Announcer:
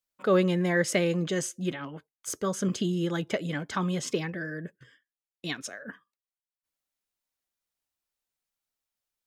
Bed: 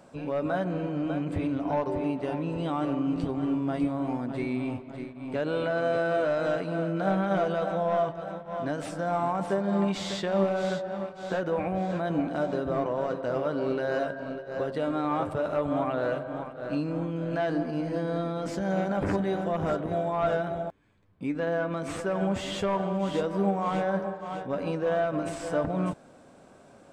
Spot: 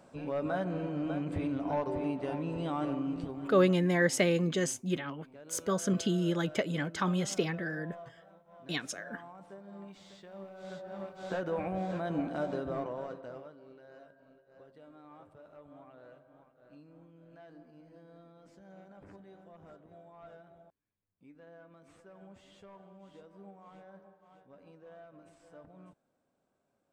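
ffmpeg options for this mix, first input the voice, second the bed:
ffmpeg -i stem1.wav -i stem2.wav -filter_complex "[0:a]adelay=3250,volume=-1.5dB[link_01];[1:a]volume=12dB,afade=type=out:start_time=2.84:duration=0.93:silence=0.133352,afade=type=in:start_time=10.56:duration=0.66:silence=0.149624,afade=type=out:start_time=12.52:duration=1.04:silence=0.0944061[link_02];[link_01][link_02]amix=inputs=2:normalize=0" out.wav

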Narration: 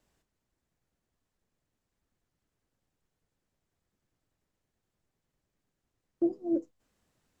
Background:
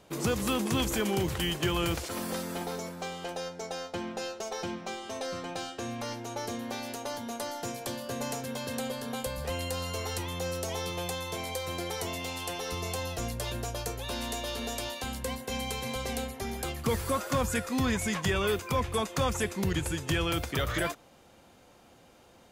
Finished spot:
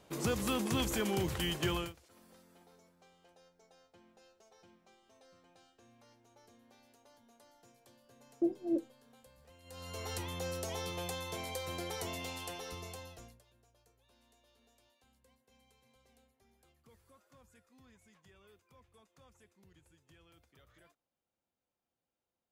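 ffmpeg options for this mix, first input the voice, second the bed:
ffmpeg -i stem1.wav -i stem2.wav -filter_complex "[0:a]adelay=2200,volume=-3.5dB[link_01];[1:a]volume=17.5dB,afade=type=out:start_time=1.73:duration=0.2:silence=0.0707946,afade=type=in:start_time=9.63:duration=0.51:silence=0.0794328,afade=type=out:start_time=12.22:duration=1.21:silence=0.0334965[link_02];[link_01][link_02]amix=inputs=2:normalize=0" out.wav

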